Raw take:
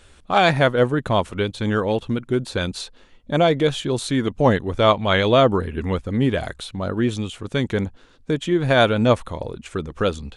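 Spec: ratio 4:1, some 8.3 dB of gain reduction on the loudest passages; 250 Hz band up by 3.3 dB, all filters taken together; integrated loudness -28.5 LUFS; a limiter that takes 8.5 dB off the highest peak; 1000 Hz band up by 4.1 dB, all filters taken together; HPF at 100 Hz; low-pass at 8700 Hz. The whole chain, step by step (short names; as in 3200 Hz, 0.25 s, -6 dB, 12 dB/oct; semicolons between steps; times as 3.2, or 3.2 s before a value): HPF 100 Hz; LPF 8700 Hz; bell 250 Hz +4 dB; bell 1000 Hz +5.5 dB; compressor 4:1, threshold -17 dBFS; gain -2.5 dB; limiter -16.5 dBFS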